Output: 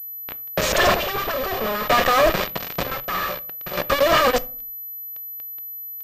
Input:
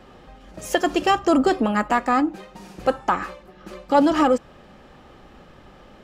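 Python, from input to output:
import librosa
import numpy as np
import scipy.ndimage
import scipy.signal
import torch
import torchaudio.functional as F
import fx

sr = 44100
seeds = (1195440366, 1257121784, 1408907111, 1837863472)

y = fx.lower_of_two(x, sr, delay_ms=1.7)
y = fx.low_shelf(y, sr, hz=130.0, db=-10.0)
y = fx.over_compress(y, sr, threshold_db=-26.0, ratio=-0.5)
y = np.sign(y) * np.maximum(np.abs(y) - 10.0 ** (-39.5 / 20.0), 0.0)
y = fx.dispersion(y, sr, late='highs', ms=48.0, hz=1500.0, at=(0.72, 1.32))
y = fx.fuzz(y, sr, gain_db=44.0, gate_db=-44.0)
y = fx.chopper(y, sr, hz=0.53, depth_pct=65, duty_pct=50)
y = fx.room_shoebox(y, sr, seeds[0], volume_m3=340.0, walls='furnished', distance_m=0.31)
y = fx.pwm(y, sr, carrier_hz=12000.0)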